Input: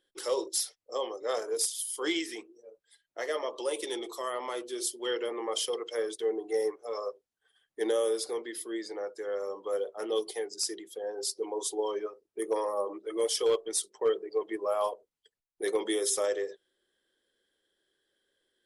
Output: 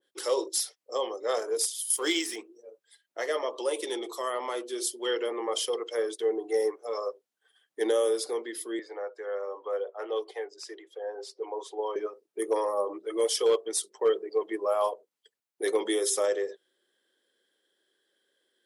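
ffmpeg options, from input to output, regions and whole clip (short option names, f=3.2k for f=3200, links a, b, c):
-filter_complex "[0:a]asettb=1/sr,asplit=3[a][b][c];[a]atrim=end=1.904[d];[b]atrim=start=1.9:end=2.36,asetpts=PTS-STARTPTS,afade=t=in:d=0.004:c=qsin,afade=t=out:st=0.456:d=0.004:c=qsin,highshelf=f=4.8k:g=12,aeval=exprs='sgn(val(0))*max(abs(val(0))-0.00299,0)':c=same[e];[c]atrim=start=2.356[f];[d][e]acrossfade=d=0.004:c1=hsin:c2=qsin[g];[g][f]acrossfade=d=0.004:c1=qsin:c2=hsin,asettb=1/sr,asplit=3[h][i][j];[h]atrim=end=8.794[k];[i]atrim=start=8.79:end=11.96,asetpts=PTS-STARTPTS,afade=t=in:d=0.004:c=qsin,afade=t=out:st=3.166:d=0.004:c=qsin,lowpass=7.3k,acrossover=split=400 2700:gain=0.0891 1 0.178[l][m][n];[l][m][n]amix=inputs=3:normalize=0[o];[j]atrim=start=11.956[p];[k][o]acrossfade=d=0.004:c1=hsin:c2=qsin[q];[q][p]acrossfade=d=0.004:c1=qsin:c2=hsin,highpass=230,adynamicequalizer=threshold=0.00562:dfrequency=1800:dqfactor=0.7:tfrequency=1800:tqfactor=0.7:attack=5:release=100:ratio=0.375:range=1.5:mode=cutabove:tftype=highshelf,volume=3dB"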